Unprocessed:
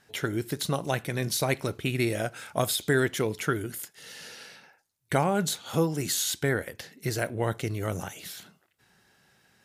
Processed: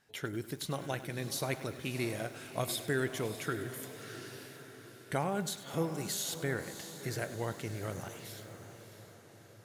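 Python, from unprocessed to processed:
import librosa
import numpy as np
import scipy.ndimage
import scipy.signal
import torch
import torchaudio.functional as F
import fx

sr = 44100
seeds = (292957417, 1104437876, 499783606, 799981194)

p1 = x + fx.echo_diffused(x, sr, ms=644, feedback_pct=54, wet_db=-11.0, dry=0)
p2 = fx.echo_crushed(p1, sr, ms=100, feedback_pct=55, bits=7, wet_db=-14.5)
y = F.gain(torch.from_numpy(p2), -8.5).numpy()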